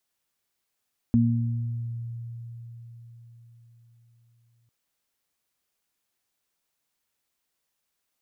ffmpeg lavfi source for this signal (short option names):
-f lavfi -i "aevalsrc='0.0944*pow(10,-3*t/4.91)*sin(2*PI*117*t)+0.158*pow(10,-3*t/1.16)*sin(2*PI*234*t)':d=3.55:s=44100"